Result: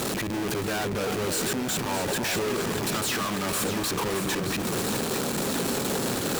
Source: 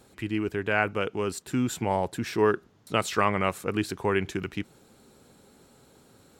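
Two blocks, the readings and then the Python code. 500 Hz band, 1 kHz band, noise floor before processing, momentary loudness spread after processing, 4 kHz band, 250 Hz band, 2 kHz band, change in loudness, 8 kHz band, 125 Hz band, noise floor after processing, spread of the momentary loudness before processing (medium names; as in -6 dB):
0.0 dB, -1.0 dB, -59 dBFS, 2 LU, +9.0 dB, +2.0 dB, +0.5 dB, +1.0 dB, +12.5 dB, +1.5 dB, -30 dBFS, 8 LU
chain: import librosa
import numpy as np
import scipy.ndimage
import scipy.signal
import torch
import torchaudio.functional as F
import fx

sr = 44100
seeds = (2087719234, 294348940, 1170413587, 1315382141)

p1 = np.sign(x) * np.sqrt(np.mean(np.square(x)))
p2 = scipy.signal.sosfilt(scipy.signal.butter(2, 150.0, 'highpass', fs=sr, output='sos'), p1)
p3 = fx.low_shelf(p2, sr, hz=260.0, db=6.5)
p4 = fx.notch(p3, sr, hz=2100.0, q=17.0)
p5 = fx.fold_sine(p4, sr, drive_db=11, ceiling_db=-17.5)
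p6 = p4 + (p5 * 10.0 ** (-4.0 / 20.0))
p7 = fx.echo_alternate(p6, sr, ms=309, hz=1100.0, feedback_pct=79, wet_db=-6.5)
y = p7 * 10.0 ** (-8.5 / 20.0)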